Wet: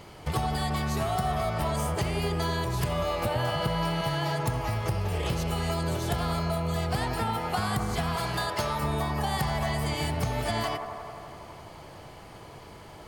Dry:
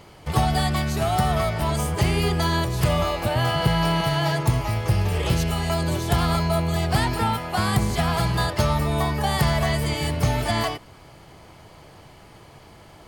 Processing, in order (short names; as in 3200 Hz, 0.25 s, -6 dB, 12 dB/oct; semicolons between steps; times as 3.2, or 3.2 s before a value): 8.16–8.83 low shelf 240 Hz -10.5 dB; compressor, threshold -26 dBFS, peak gain reduction 11 dB; band-limited delay 87 ms, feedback 80%, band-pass 720 Hz, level -6 dB